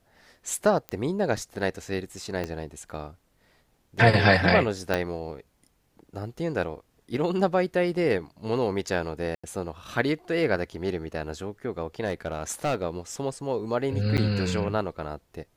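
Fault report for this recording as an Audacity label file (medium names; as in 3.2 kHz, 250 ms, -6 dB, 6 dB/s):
0.890000	0.890000	pop -18 dBFS
2.440000	2.440000	pop -17 dBFS
4.940000	4.940000	pop -11 dBFS
9.350000	9.440000	dropout 85 ms
12.040000	12.830000	clipped -21 dBFS
14.170000	14.180000	dropout 8.8 ms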